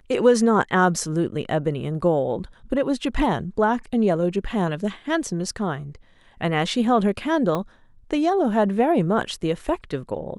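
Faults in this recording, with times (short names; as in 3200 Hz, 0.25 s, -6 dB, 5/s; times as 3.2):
7.55 gap 2.1 ms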